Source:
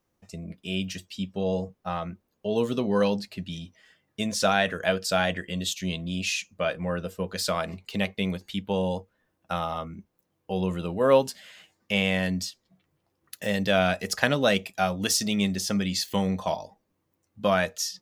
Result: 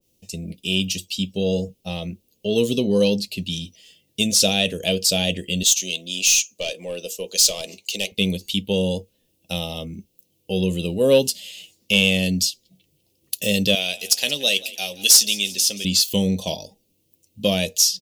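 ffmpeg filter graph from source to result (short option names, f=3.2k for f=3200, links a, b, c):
-filter_complex "[0:a]asettb=1/sr,asplit=3[a][b][c];[a]atrim=end=5.634[d];[b]atrim=start=5.63:end=8.12,asetpts=PTS-STARTPTS,afade=t=in:d=0.004:c=qsin,afade=t=out:st=2.486:d=0.004:c=qsin,highpass=440,equalizer=f=6.4k:t=o:w=0.38:g=10,aeval=exprs='(tanh(12.6*val(0)+0.15)-tanh(0.15))/12.6':c=same[e];[c]atrim=start=8.116[f];[d][e]acrossfade=d=0.004:c1=hsin:c2=qsin[g];[g][f]acrossfade=d=0.004:c1=qsin:c2=hsin,asettb=1/sr,asplit=3[h][i][j];[h]atrim=end=13.754[k];[i]atrim=start=13.75:end=15.85,asetpts=PTS-STARTPTS,afade=t=in:d=0.004:c=qsin,afade=t=out:st=2.096:d=0.004:c=qsin,highpass=f=1.3k:p=1,asplit=2[l][m];[m]adelay=13,volume=-12dB[n];[l][n]amix=inputs=2:normalize=0,atrim=end_sample=92610,asplit=5[o][p][q][r][s];[p]adelay=176,afreqshift=33,volume=-19dB[t];[q]adelay=352,afreqshift=66,volume=-24.7dB[u];[r]adelay=528,afreqshift=99,volume=-30.4dB[v];[s]adelay=704,afreqshift=132,volume=-36dB[w];[o][t][u][v][w]amix=inputs=5:normalize=0,atrim=end_sample=92610[x];[j]atrim=start=15.846[y];[k][x]acrossfade=d=0.004:c1=hsin:c2=qsin[z];[z][y]acrossfade=d=0.004:c1=qsin:c2=hsin,firequalizer=gain_entry='entry(500,0);entry(710,-10);entry(1400,-25);entry(2700,7);entry(12000,12)':delay=0.05:min_phase=1,acontrast=50,adynamicequalizer=threshold=0.0282:dfrequency=1600:dqfactor=0.7:tfrequency=1600:tqfactor=0.7:attack=5:release=100:ratio=0.375:range=1.5:mode=cutabove:tftype=highshelf"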